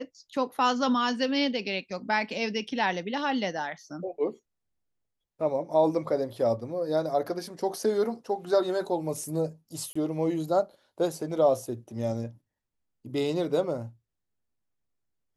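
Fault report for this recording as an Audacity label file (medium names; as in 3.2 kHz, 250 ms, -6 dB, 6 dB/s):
9.930000	9.960000	dropout 25 ms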